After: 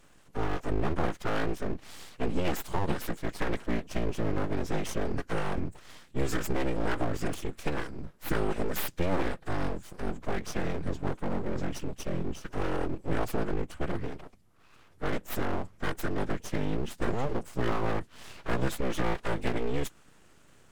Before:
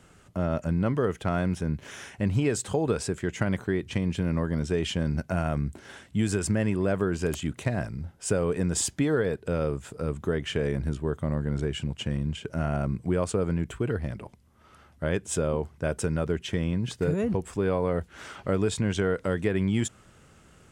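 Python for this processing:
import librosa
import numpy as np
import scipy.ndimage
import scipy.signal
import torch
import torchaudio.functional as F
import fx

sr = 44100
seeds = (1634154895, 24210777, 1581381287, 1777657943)

y = fx.pitch_keep_formants(x, sr, semitones=-8.5)
y = np.abs(y)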